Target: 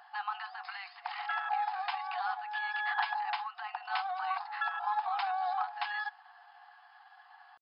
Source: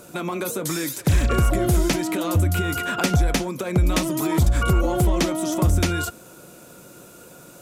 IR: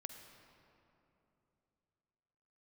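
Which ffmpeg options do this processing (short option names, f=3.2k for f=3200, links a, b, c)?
-af "tiltshelf=f=1.3k:g=10,asetrate=52444,aresample=44100,atempo=0.840896,afftfilt=real='re*between(b*sr/4096,700,5200)':imag='im*between(b*sr/4096,700,5200)':win_size=4096:overlap=0.75,volume=-6dB"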